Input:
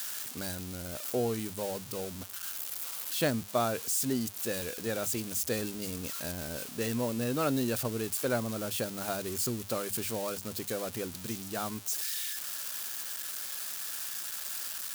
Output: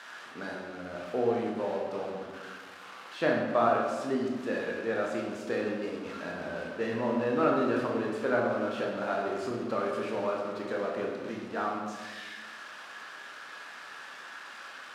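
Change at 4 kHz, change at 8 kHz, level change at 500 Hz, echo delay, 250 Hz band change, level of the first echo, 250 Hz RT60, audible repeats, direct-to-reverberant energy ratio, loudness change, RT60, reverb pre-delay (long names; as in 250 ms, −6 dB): −7.0 dB, below −15 dB, +5.0 dB, no echo audible, +2.0 dB, no echo audible, 1.7 s, no echo audible, −2.0 dB, +1.5 dB, 1.5 s, 14 ms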